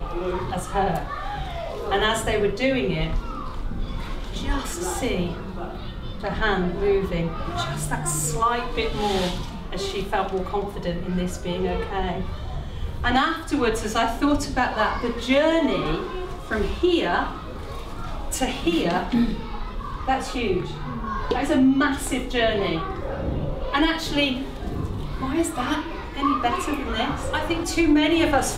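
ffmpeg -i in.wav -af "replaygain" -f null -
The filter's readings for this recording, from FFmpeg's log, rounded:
track_gain = +3.7 dB
track_peak = 0.299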